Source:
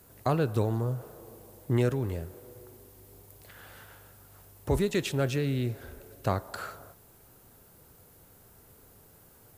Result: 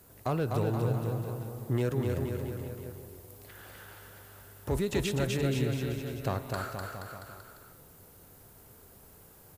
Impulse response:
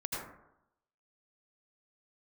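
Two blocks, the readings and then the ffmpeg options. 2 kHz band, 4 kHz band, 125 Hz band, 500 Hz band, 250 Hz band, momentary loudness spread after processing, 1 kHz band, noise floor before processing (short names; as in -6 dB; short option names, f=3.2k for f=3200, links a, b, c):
-0.5 dB, 0.0 dB, -0.5 dB, -1.0 dB, -1.0 dB, 20 LU, -1.5 dB, -57 dBFS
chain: -filter_complex "[0:a]asplit=2[a][b];[b]alimiter=level_in=1dB:limit=-24dB:level=0:latency=1,volume=-1dB,volume=1dB[c];[a][c]amix=inputs=2:normalize=0,asoftclip=type=hard:threshold=-15dB,aecho=1:1:250|475|677.5|859.8|1024:0.631|0.398|0.251|0.158|0.1,volume=-7dB"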